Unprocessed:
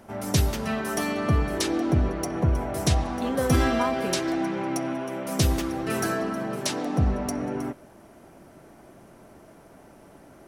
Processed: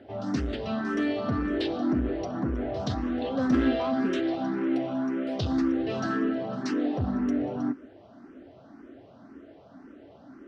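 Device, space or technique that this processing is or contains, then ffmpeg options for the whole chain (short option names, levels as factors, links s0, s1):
barber-pole phaser into a guitar amplifier: -filter_complex "[0:a]asplit=2[s0][s1];[s1]afreqshift=1.9[s2];[s0][s2]amix=inputs=2:normalize=1,asoftclip=type=tanh:threshold=0.0668,highpass=76,equalizer=f=160:t=q:w=4:g=-8,equalizer=f=270:t=q:w=4:g=10,equalizer=f=940:t=q:w=4:g=-7,equalizer=f=2300:t=q:w=4:g=-7,lowpass=f=4200:w=0.5412,lowpass=f=4200:w=1.3066,volume=1.26"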